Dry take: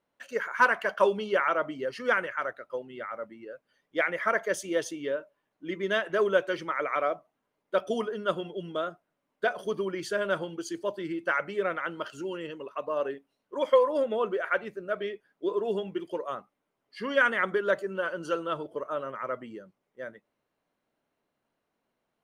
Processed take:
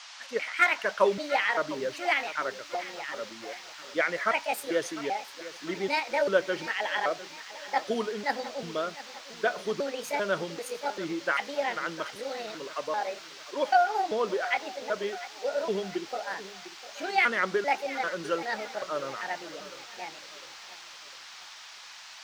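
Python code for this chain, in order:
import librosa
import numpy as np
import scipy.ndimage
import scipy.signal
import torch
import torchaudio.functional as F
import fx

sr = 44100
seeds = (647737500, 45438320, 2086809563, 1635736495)

y = fx.pitch_trill(x, sr, semitones=6.0, every_ms=392)
y = fx.dmg_noise_band(y, sr, seeds[0], low_hz=770.0, high_hz=5900.0, level_db=-47.0)
y = fx.echo_crushed(y, sr, ms=702, feedback_pct=55, bits=8, wet_db=-15.0)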